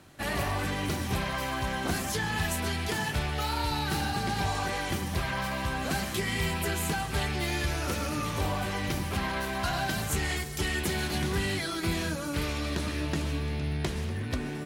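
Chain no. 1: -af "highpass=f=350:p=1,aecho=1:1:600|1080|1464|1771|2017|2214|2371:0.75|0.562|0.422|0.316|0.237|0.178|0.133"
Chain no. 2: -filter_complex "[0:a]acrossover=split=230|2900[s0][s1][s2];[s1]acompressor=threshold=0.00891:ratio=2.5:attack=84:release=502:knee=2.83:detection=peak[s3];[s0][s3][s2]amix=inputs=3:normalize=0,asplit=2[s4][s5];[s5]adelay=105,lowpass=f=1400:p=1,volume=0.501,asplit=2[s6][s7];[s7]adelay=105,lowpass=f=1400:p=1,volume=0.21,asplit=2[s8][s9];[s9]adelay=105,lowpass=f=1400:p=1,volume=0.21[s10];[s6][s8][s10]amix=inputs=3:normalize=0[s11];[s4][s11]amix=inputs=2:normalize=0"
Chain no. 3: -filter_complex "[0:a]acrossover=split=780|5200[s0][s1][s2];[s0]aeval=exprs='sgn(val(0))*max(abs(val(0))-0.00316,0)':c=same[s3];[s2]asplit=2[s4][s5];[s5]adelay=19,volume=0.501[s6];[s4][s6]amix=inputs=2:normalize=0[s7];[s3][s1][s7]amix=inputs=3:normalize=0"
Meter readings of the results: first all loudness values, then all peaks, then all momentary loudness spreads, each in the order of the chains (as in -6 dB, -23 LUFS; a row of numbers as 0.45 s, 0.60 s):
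-29.0 LUFS, -32.0 LUFS, -31.0 LUFS; -15.5 dBFS, -15.5 dBFS, -17.0 dBFS; 4 LU, 2 LU, 3 LU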